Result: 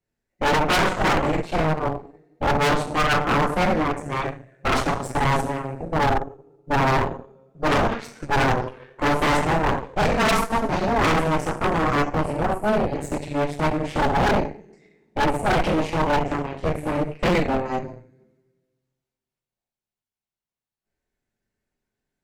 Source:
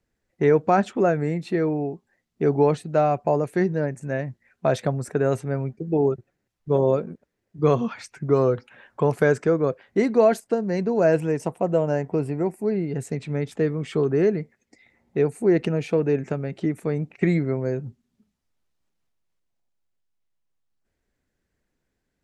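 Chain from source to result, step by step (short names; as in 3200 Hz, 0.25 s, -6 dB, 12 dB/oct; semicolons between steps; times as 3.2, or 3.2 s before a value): two-slope reverb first 0.59 s, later 1.7 s, DRR -5.5 dB; added harmonics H 3 -16 dB, 4 -11 dB, 8 -10 dB, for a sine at 1 dBFS; hard clip -12 dBFS, distortion -6 dB; gain -5 dB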